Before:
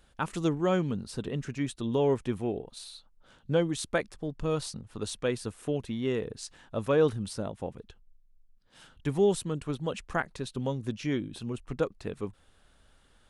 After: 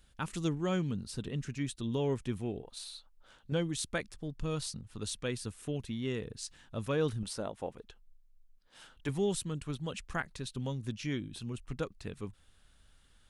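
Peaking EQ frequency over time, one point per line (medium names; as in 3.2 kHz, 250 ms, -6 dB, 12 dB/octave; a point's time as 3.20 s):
peaking EQ -9 dB 2.8 oct
670 Hz
from 2.63 s 160 Hz
from 3.52 s 630 Hz
from 7.23 s 110 Hz
from 9.09 s 560 Hz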